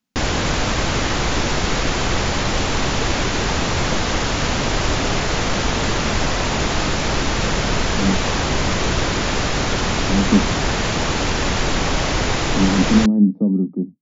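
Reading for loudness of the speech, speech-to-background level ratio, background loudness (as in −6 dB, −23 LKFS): −19.0 LKFS, 1.0 dB, −20.0 LKFS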